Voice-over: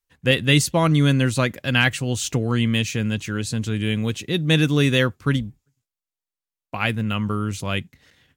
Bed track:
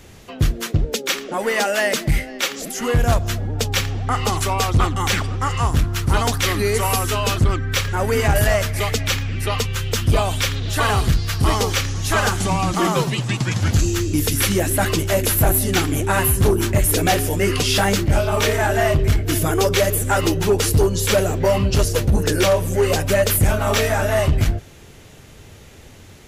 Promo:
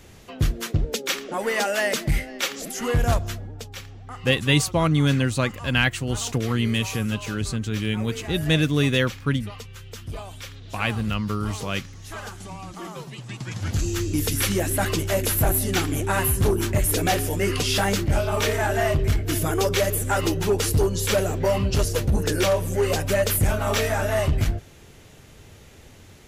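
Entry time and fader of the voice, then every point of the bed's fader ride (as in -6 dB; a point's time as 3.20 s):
4.00 s, -2.5 dB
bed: 3.15 s -4 dB
3.70 s -17.5 dB
13.01 s -17.5 dB
14.01 s -4.5 dB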